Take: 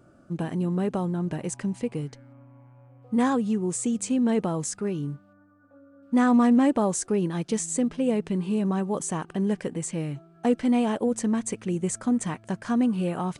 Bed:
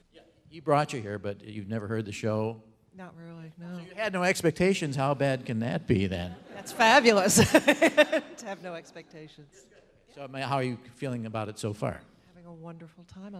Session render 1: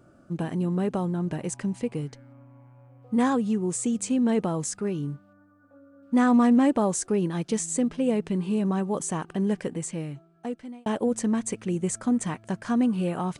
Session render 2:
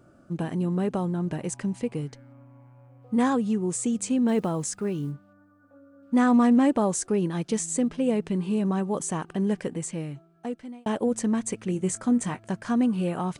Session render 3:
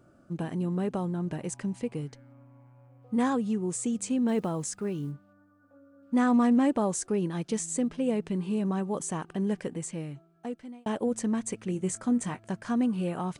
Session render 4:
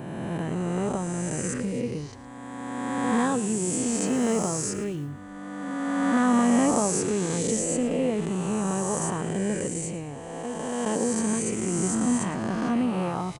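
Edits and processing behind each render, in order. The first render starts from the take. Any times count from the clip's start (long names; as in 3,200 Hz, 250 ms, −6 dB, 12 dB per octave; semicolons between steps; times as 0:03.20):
0:09.69–0:10.86: fade out
0:04.28–0:05.13: one scale factor per block 7 bits; 0:11.67–0:12.49: double-tracking delay 21 ms −11.5 dB
level −3.5 dB
peak hold with a rise ahead of every peak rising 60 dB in 2.62 s; echo with shifted repeats 112 ms, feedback 35%, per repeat −49 Hz, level −15 dB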